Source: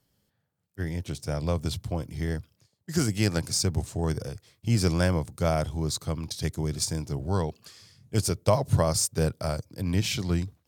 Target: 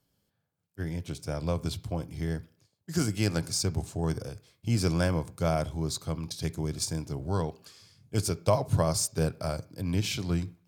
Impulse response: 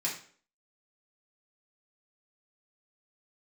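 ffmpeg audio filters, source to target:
-filter_complex "[0:a]bandreject=frequency=1900:width=10,asplit=2[link_01][link_02];[1:a]atrim=start_sample=2205,lowpass=3500[link_03];[link_02][link_03]afir=irnorm=-1:irlink=0,volume=-17dB[link_04];[link_01][link_04]amix=inputs=2:normalize=0,volume=-3dB"

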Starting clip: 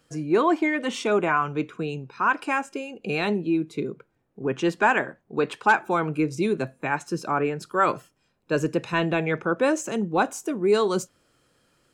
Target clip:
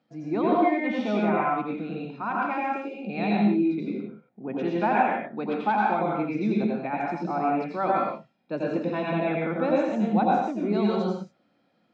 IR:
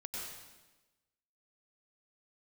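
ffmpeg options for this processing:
-filter_complex "[0:a]highpass=200,equalizer=frequency=210:width_type=q:width=4:gain=10,equalizer=frequency=430:width_type=q:width=4:gain=-9,equalizer=frequency=730:width_type=q:width=4:gain=6,equalizer=frequency=1100:width_type=q:width=4:gain=-7,equalizer=frequency=1600:width_type=q:width=4:gain=-10,equalizer=frequency=2900:width_type=q:width=4:gain=-10,lowpass=frequency=3600:width=0.5412,lowpass=frequency=3600:width=1.3066[link_01];[1:a]atrim=start_sample=2205,afade=type=out:start_time=0.36:duration=0.01,atrim=end_sample=16317,asetrate=48510,aresample=44100[link_02];[link_01][link_02]afir=irnorm=-1:irlink=0,volume=2dB"

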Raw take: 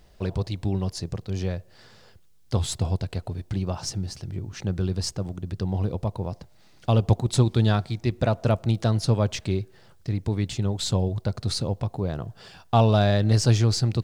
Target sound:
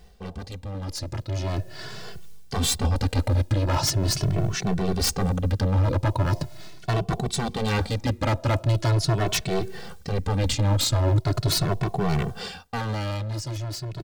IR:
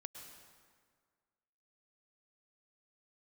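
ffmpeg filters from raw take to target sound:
-filter_complex "[0:a]areverse,acompressor=threshold=-31dB:ratio=10,areverse,aeval=exprs='0.0237*(abs(mod(val(0)/0.0237+3,4)-2)-1)':channel_layout=same,dynaudnorm=framelen=180:gausssize=17:maxgain=12dB,asplit=2[link_01][link_02];[link_02]adelay=2.2,afreqshift=0.41[link_03];[link_01][link_03]amix=inputs=2:normalize=1,volume=6.5dB"

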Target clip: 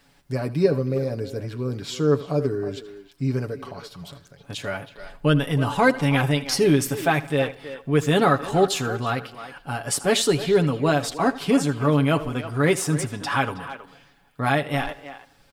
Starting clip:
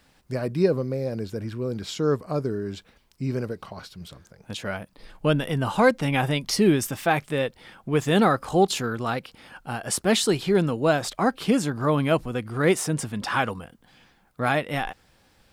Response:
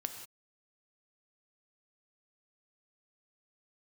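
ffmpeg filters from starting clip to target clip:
-filter_complex "[0:a]aecho=1:1:7.1:0.65,asplit=2[link_01][link_02];[link_02]adelay=320,highpass=300,lowpass=3400,asoftclip=type=hard:threshold=-14dB,volume=-12dB[link_03];[link_01][link_03]amix=inputs=2:normalize=0,asplit=2[link_04][link_05];[1:a]atrim=start_sample=2205,afade=type=out:start_time=0.21:duration=0.01,atrim=end_sample=9702,adelay=79[link_06];[link_05][link_06]afir=irnorm=-1:irlink=0,volume=-16.5dB[link_07];[link_04][link_07]amix=inputs=2:normalize=0"

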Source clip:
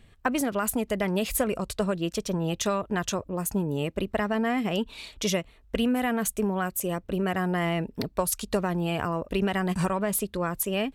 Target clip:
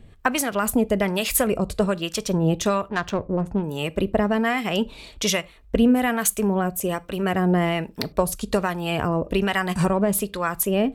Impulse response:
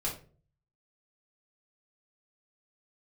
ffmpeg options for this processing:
-filter_complex "[0:a]asettb=1/sr,asplit=3[link_01][link_02][link_03];[link_01]atrim=end=2.884[link_04];[link_02]atrim=start=2.88:end=3.64,asetpts=PTS-STARTPTS,afade=type=in:duration=0.004:curve=qsin,afade=type=out:start_time=0.756:duration=0.004:curve=qsin,adynamicsmooth=sensitivity=2:basefreq=1200[link_05];[link_03]atrim=start=3.636[link_06];[link_04][link_05]acrossfade=duration=0.004:curve1=hsin:curve2=qsin[link_07];[link_07][link_06]acrossfade=duration=0.004:curve1=qsin:curve2=hsin,acrossover=split=780[link_08][link_09];[link_08]aeval=exprs='val(0)*(1-0.7/2+0.7/2*cos(2*PI*1.2*n/s))':channel_layout=same[link_10];[link_09]aeval=exprs='val(0)*(1-0.7/2-0.7/2*cos(2*PI*1.2*n/s))':channel_layout=same[link_11];[link_10][link_11]amix=inputs=2:normalize=0,asplit=2[link_12][link_13];[1:a]atrim=start_sample=2205,atrim=end_sample=3969,adelay=13[link_14];[link_13][link_14]afir=irnorm=-1:irlink=0,volume=-22.5dB[link_15];[link_12][link_15]amix=inputs=2:normalize=0,volume=8.5dB"

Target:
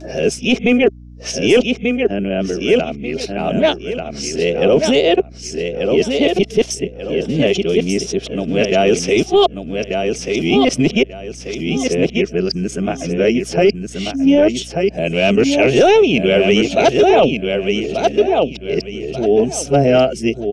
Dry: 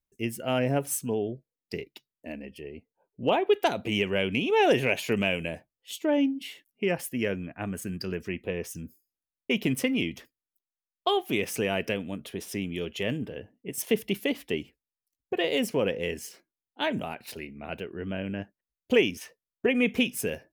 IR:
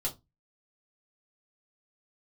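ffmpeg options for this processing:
-filter_complex "[0:a]areverse,asplit=2[link_01][link_02];[link_02]aecho=0:1:1188|2376|3564:0.501|0.11|0.0243[link_03];[link_01][link_03]amix=inputs=2:normalize=0,acompressor=mode=upward:threshold=-31dB:ratio=2.5,highpass=frequency=140:width=0.5412,highpass=frequency=140:width=1.3066,equalizer=frequency=150:width_type=q:width=4:gain=5,equalizer=frequency=390:width_type=q:width=4:gain=6,equalizer=frequency=660:width_type=q:width=4:gain=7,equalizer=frequency=970:width_type=q:width=4:gain=-8,equalizer=frequency=1800:width_type=q:width=4:gain=-8,equalizer=frequency=5600:width_type=q:width=4:gain=9,lowpass=frequency=7300:width=0.5412,lowpass=frequency=7300:width=1.3066,aeval=exprs='val(0)+0.00398*(sin(2*PI*60*n/s)+sin(2*PI*2*60*n/s)/2+sin(2*PI*3*60*n/s)/3+sin(2*PI*4*60*n/s)/4+sin(2*PI*5*60*n/s)/5)':channel_layout=same,apsyclip=17dB,volume=-5dB"

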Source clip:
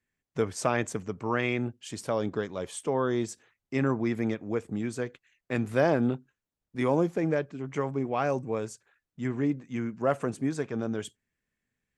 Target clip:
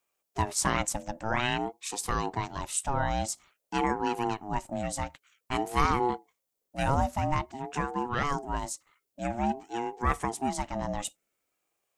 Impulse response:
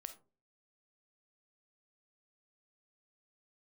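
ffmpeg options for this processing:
-af "crystalizer=i=2.5:c=0,aeval=exprs='val(0)*sin(2*PI*510*n/s+510*0.2/0.5*sin(2*PI*0.5*n/s))':channel_layout=same,volume=1.5dB"

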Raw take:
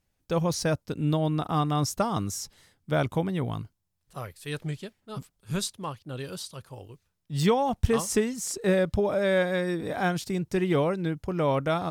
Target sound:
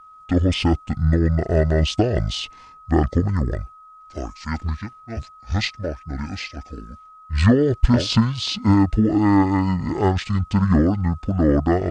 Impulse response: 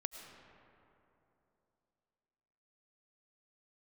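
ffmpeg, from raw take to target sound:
-af "aeval=exprs='val(0)+0.00282*sin(2*PI*2400*n/s)':channel_layout=same,asetrate=23361,aresample=44100,atempo=1.88775,volume=8dB"

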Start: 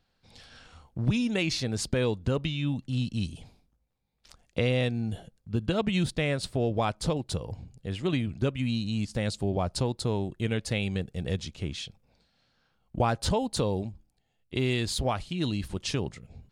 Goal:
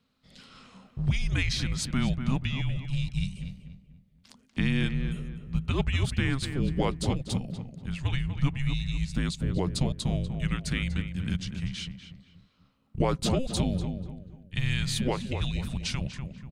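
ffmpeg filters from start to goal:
ffmpeg -i in.wav -filter_complex "[0:a]asplit=2[link_01][link_02];[link_02]adelay=243,lowpass=frequency=2100:poles=1,volume=-7dB,asplit=2[link_03][link_04];[link_04]adelay=243,lowpass=frequency=2100:poles=1,volume=0.38,asplit=2[link_05][link_06];[link_06]adelay=243,lowpass=frequency=2100:poles=1,volume=0.38,asplit=2[link_07][link_08];[link_08]adelay=243,lowpass=frequency=2100:poles=1,volume=0.38[link_09];[link_01][link_03][link_05][link_07][link_09]amix=inputs=5:normalize=0,afreqshift=-270" out.wav

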